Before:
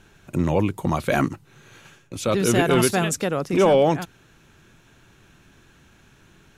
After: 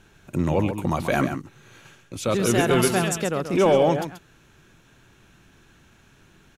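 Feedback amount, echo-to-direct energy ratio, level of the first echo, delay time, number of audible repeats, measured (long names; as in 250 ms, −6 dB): repeats not evenly spaced, −9.0 dB, −9.0 dB, 133 ms, 1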